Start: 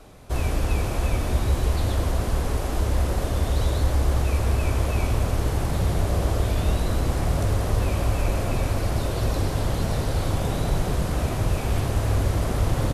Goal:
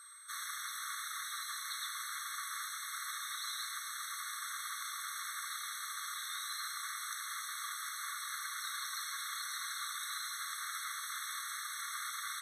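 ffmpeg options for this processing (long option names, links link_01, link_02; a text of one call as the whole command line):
ffmpeg -i in.wav -filter_complex "[0:a]acrossover=split=2800[link_01][link_02];[link_01]alimiter=limit=-21dB:level=0:latency=1:release=19[link_03];[link_03][link_02]amix=inputs=2:normalize=0,asetrate=45938,aresample=44100,aeval=exprs='val(0)+0.00224*sin(2*PI*8300*n/s)':channel_layout=same,afftfilt=real='re*eq(mod(floor(b*sr/1024/1100),2),1)':imag='im*eq(mod(floor(b*sr/1024/1100),2),1)':win_size=1024:overlap=0.75" out.wav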